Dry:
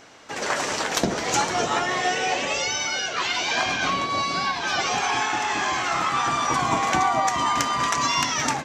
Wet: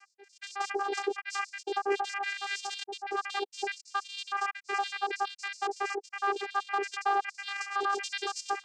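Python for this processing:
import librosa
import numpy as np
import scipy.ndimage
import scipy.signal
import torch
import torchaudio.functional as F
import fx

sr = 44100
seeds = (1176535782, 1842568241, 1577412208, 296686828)

y = fx.spec_dropout(x, sr, seeds[0], share_pct=83)
y = 10.0 ** (-23.5 / 20.0) * np.tanh(y / 10.0 ** (-23.5 / 20.0))
y = fx.vocoder(y, sr, bands=8, carrier='saw', carrier_hz=399.0)
y = y * 10.0 ** (1.0 / 20.0)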